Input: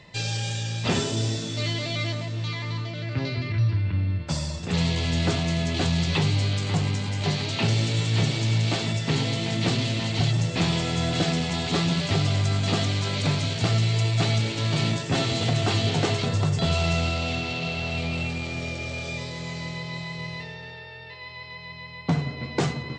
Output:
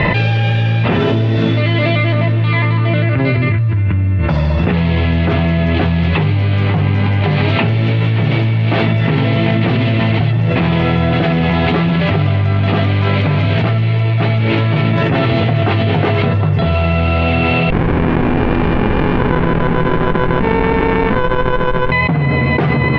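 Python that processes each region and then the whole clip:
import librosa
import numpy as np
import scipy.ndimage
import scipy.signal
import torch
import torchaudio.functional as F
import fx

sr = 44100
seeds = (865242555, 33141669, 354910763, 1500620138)

y = fx.chain(x, sr, fx.bandpass_edges(low_hz=370.0, high_hz=2900.0),
    fx.running_max(window=65), at=(17.7, 21.92))
y = scipy.signal.sosfilt(scipy.signal.butter(4, 2600.0, 'lowpass', fs=sr, output='sos'), y)
y = fx.env_flatten(y, sr, amount_pct=100)
y = y * 10.0 ** (6.0 / 20.0)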